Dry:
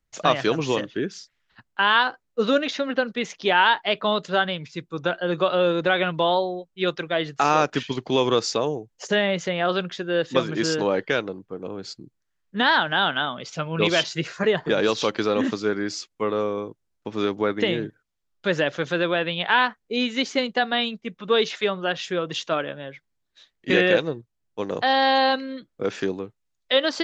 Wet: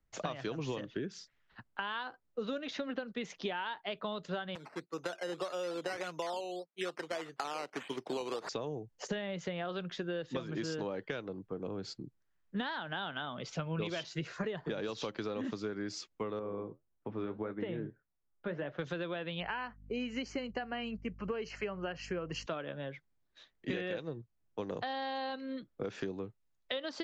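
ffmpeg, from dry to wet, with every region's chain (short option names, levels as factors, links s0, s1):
-filter_complex "[0:a]asettb=1/sr,asplit=3[s0][s1][s2];[s0]atrim=end=4.554[s3];[s1]atrim=start=4.55:end=8.49,asetpts=PTS-STARTPTS,afade=t=in:d=0.004:c=qsin,afade=t=out:st=3.936:d=0.004:c=qsin,agate=range=0.501:threshold=0.00501:ratio=16:release=100:detection=peak,acrusher=samples=10:mix=1:aa=0.000001:lfo=1:lforange=6:lforate=1.7,highpass=350,lowpass=6700[s4];[s2]atrim=start=8.486[s5];[s3][s4]acrossfade=d=0.004:c1=hsin:c2=qsin[s6];[s6][s5]acrossfade=d=0.004:c1=qsin:c2=hsin,asettb=1/sr,asplit=3[s7][s8][s9];[s7]atrim=end=16.394[s10];[s8]atrim=start=16.39:end=18.79,asetpts=PTS-STARTPTS,afade=t=in:d=0.004:c=qsin,afade=t=out:st=2.396:d=0.004:c=qsin,lowpass=1900,flanger=delay=5.4:depth=7.9:regen=-58:speed=1.7:shape=sinusoidal[s11];[s9]atrim=start=18.786[s12];[s10][s11]acrossfade=d=0.004:c1=hsin:c2=qsin[s13];[s13][s12]acrossfade=d=0.004:c1=qsin:c2=hsin,asettb=1/sr,asplit=3[s14][s15][s16];[s14]atrim=end=19.404[s17];[s15]atrim=start=19.4:end=22.46,asetpts=PTS-STARTPTS,afade=t=in:d=0.004:c=qsin,afade=t=out:st=3.056:d=0.004:c=qsin,aeval=exprs='val(0)+0.00316*(sin(2*PI*50*n/s)+sin(2*PI*2*50*n/s)/2+sin(2*PI*3*50*n/s)/3+sin(2*PI*4*50*n/s)/4+sin(2*PI*5*50*n/s)/5)':c=same,asuperstop=centerf=3600:order=8:qfactor=3.4[s18];[s16]atrim=start=22.456[s19];[s17][s18]acrossfade=d=0.004:c1=hsin:c2=qsin[s20];[s20][s19]acrossfade=d=0.004:c1=qsin:c2=hsin,acompressor=threshold=0.0398:ratio=6,highshelf=f=2900:g=-11,acrossover=split=150|3000[s21][s22][s23];[s22]acompressor=threshold=0.00501:ratio=1.5[s24];[s21][s24][s23]amix=inputs=3:normalize=0"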